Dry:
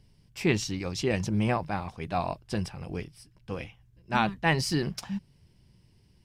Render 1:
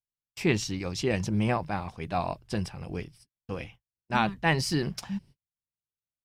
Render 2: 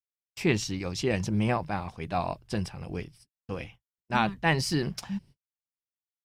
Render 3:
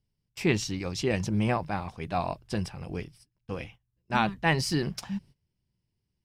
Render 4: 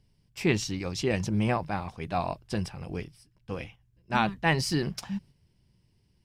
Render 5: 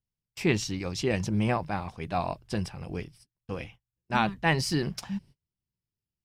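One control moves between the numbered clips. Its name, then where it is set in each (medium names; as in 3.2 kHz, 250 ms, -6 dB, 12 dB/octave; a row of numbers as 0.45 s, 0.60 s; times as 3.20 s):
gate, range: -46 dB, -59 dB, -19 dB, -6 dB, -31 dB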